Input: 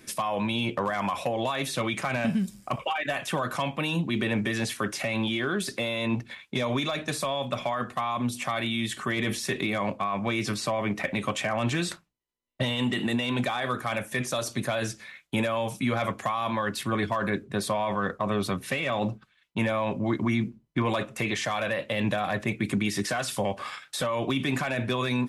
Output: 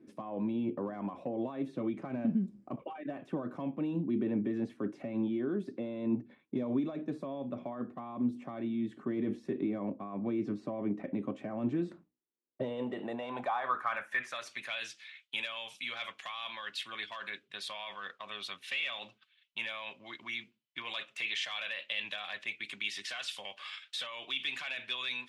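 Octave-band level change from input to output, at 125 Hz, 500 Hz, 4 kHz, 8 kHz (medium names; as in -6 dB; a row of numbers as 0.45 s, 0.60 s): -14.0 dB, -10.5 dB, -6.0 dB, -17.0 dB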